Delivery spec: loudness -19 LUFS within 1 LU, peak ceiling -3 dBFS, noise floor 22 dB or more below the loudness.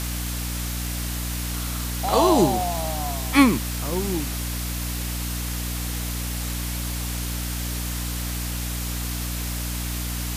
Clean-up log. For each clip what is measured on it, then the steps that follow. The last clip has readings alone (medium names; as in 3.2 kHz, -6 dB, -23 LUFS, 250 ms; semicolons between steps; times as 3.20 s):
hum 60 Hz; highest harmonic 300 Hz; hum level -27 dBFS; noise floor -28 dBFS; noise floor target -48 dBFS; loudness -25.5 LUFS; peak level -2.0 dBFS; loudness target -19.0 LUFS
-> de-hum 60 Hz, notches 5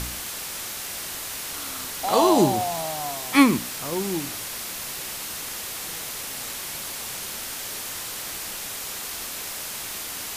hum not found; noise floor -34 dBFS; noise floor target -49 dBFS
-> noise print and reduce 15 dB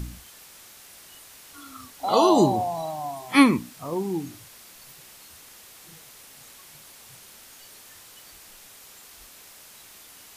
noise floor -49 dBFS; loudness -22.5 LUFS; peak level -3.0 dBFS; loudness target -19.0 LUFS
-> trim +3.5 dB; peak limiter -3 dBFS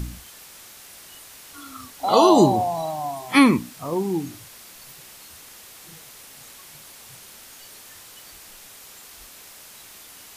loudness -19.5 LUFS; peak level -3.0 dBFS; noise floor -45 dBFS